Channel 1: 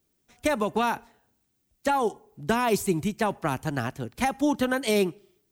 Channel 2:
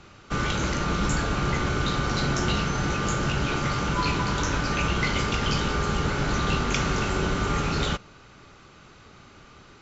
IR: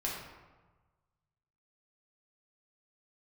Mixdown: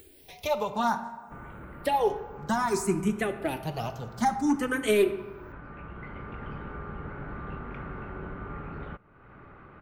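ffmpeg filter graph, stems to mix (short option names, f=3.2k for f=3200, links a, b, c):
-filter_complex "[0:a]flanger=delay=2.2:depth=3.1:regen=22:speed=1.5:shape=sinusoidal,asoftclip=type=hard:threshold=-18.5dB,asplit=2[a][b];[b]afreqshift=0.6[c];[a][c]amix=inputs=2:normalize=1,volume=1dB,asplit=2[d][e];[e]volume=-9dB[f];[1:a]lowpass=f=1.9k:w=0.5412,lowpass=f=1.9k:w=1.3066,adelay=1000,volume=-13dB,afade=t=in:st=5.77:d=0.65:silence=0.354813[g];[2:a]atrim=start_sample=2205[h];[f][h]afir=irnorm=-1:irlink=0[i];[d][g][i]amix=inputs=3:normalize=0,acompressor=mode=upward:threshold=-36dB:ratio=2.5"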